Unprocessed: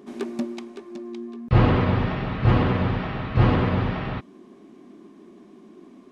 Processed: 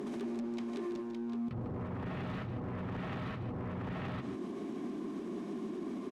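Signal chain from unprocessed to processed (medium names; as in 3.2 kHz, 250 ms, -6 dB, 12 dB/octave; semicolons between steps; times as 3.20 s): low-pass that closes with the level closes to 800 Hz, closed at -13.5 dBFS; high-pass 100 Hz 12 dB/octave; bass shelf 380 Hz +3.5 dB; compressor with a negative ratio -27 dBFS, ratio -1; peak limiter -34 dBFS, peak gain reduction 21 dB; hard clipper -36.5 dBFS, distortion -21 dB; delay 149 ms -9.5 dB; trim +2 dB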